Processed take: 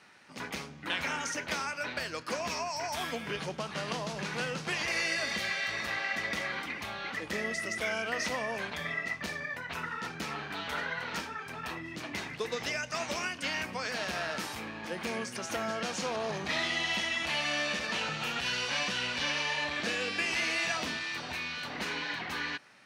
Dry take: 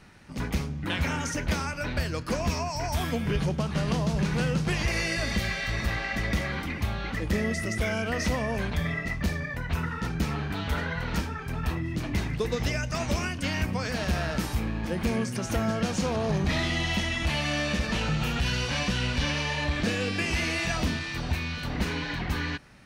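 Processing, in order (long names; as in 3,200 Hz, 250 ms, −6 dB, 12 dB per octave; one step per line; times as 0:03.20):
meter weighting curve A
level −2 dB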